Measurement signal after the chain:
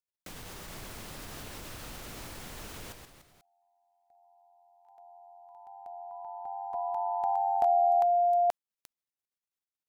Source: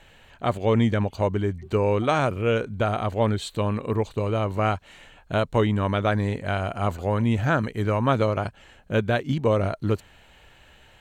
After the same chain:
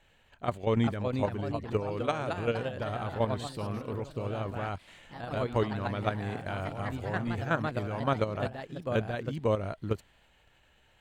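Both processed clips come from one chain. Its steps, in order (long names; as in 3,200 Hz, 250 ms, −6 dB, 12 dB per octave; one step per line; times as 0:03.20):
output level in coarse steps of 10 dB
delay with pitch and tempo change per echo 448 ms, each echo +2 semitones, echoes 3, each echo −6 dB
level −4.5 dB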